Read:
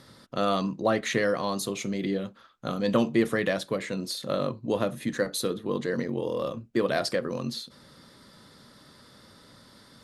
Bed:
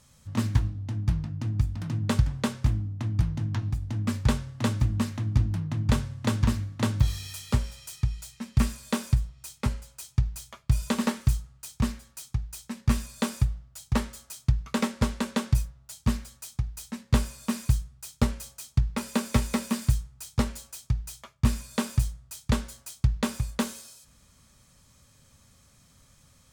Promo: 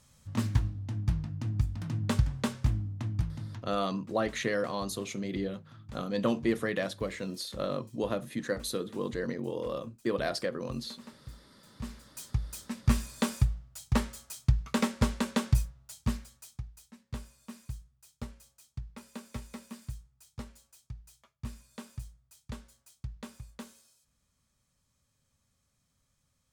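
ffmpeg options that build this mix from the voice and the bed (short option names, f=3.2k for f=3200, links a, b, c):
-filter_complex "[0:a]adelay=3300,volume=-5dB[a];[1:a]volume=18.5dB,afade=t=out:st=2.97:d=0.8:silence=0.1,afade=t=in:st=11.74:d=0.5:silence=0.0794328,afade=t=out:st=15.5:d=1.38:silence=0.16788[b];[a][b]amix=inputs=2:normalize=0"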